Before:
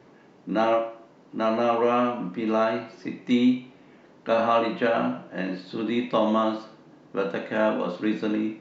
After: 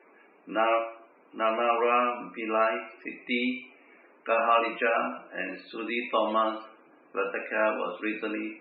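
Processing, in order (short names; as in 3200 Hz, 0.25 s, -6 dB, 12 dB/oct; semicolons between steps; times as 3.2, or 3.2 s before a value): speaker cabinet 450–4000 Hz, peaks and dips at 580 Hz -3 dB, 870 Hz -3 dB, 1300 Hz +3 dB, 2400 Hz +9 dB; loudest bins only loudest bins 64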